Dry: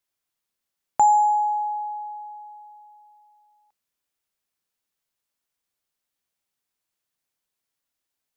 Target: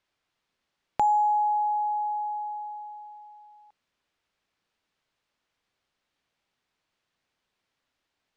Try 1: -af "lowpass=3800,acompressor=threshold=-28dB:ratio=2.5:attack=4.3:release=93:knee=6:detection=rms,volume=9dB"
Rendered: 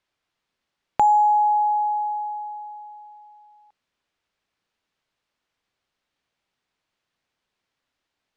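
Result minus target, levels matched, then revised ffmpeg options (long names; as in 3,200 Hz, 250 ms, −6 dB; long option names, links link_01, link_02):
downward compressor: peak gain reduction −5.5 dB
-af "lowpass=3800,acompressor=threshold=-37.5dB:ratio=2.5:attack=4.3:release=93:knee=6:detection=rms,volume=9dB"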